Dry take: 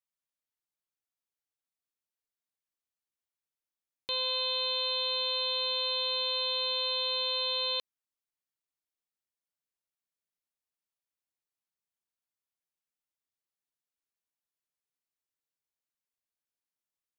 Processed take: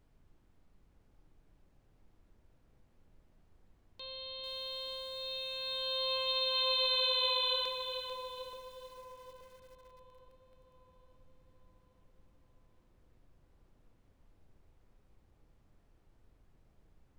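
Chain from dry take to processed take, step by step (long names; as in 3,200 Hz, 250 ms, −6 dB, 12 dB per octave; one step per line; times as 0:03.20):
source passing by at 0:06.93, 8 m/s, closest 4.7 metres
background noise brown −64 dBFS
on a send: delay with a band-pass on its return 876 ms, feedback 45%, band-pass 480 Hz, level −5 dB
on the sum: spring reverb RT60 1.2 s, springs 32/38 ms, chirp 30 ms, DRR 7.5 dB
feedback echo at a low word length 443 ms, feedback 35%, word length 9 bits, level −8.5 dB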